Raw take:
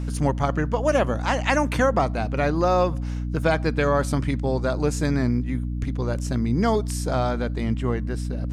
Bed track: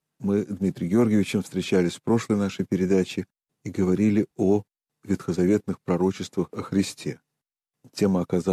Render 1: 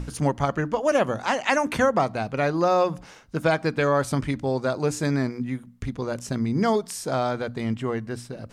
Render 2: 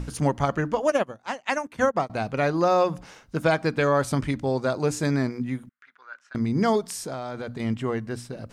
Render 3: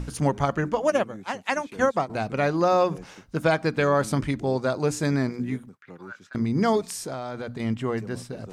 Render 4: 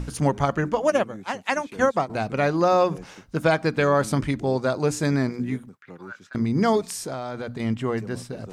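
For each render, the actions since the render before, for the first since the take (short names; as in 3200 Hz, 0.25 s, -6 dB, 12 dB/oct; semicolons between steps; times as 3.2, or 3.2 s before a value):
notches 60/120/180/240/300 Hz
0.9–2.1 upward expander 2.5:1, over -35 dBFS; 5.69–6.35 ladder band-pass 1600 Hz, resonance 70%; 6.94–7.6 compressor 5:1, threshold -29 dBFS
add bed track -21 dB
gain +1.5 dB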